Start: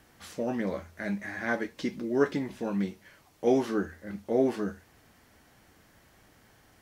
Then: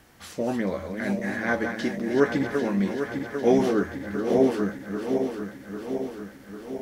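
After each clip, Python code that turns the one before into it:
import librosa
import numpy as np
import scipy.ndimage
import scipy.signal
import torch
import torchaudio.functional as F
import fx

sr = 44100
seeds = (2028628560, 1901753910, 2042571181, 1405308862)

y = fx.reverse_delay_fb(x, sr, ms=399, feedback_pct=77, wet_db=-6.5)
y = F.gain(torch.from_numpy(y), 4.0).numpy()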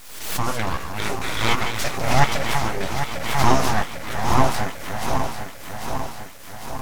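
y = fx.bass_treble(x, sr, bass_db=-12, treble_db=8)
y = np.abs(y)
y = fx.pre_swell(y, sr, db_per_s=60.0)
y = F.gain(torch.from_numpy(y), 8.0).numpy()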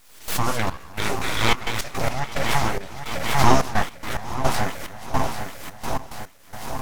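y = fx.step_gate(x, sr, bpm=108, pattern='..xxx..xxxx.x.x', floor_db=-12.0, edge_ms=4.5)
y = F.gain(torch.from_numpy(y), 1.0).numpy()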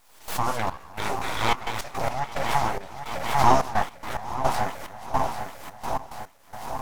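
y = fx.peak_eq(x, sr, hz=840.0, db=8.5, octaves=1.1)
y = F.gain(torch.from_numpy(y), -6.5).numpy()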